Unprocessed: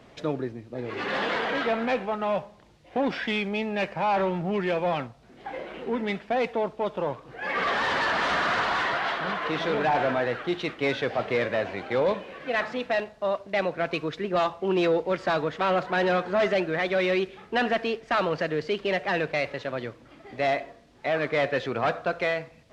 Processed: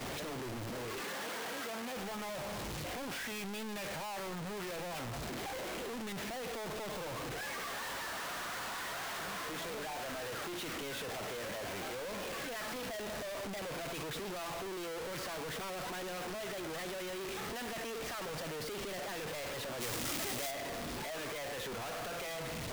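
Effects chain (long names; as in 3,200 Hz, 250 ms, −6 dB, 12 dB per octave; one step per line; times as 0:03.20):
sign of each sample alone
downward expander −15 dBFS
0:01.01–0:01.97: high-pass filter 130 Hz 12 dB per octave
0:19.80–0:20.50: high-shelf EQ 3,400 Hz → 4,500 Hz +12 dB
level +11.5 dB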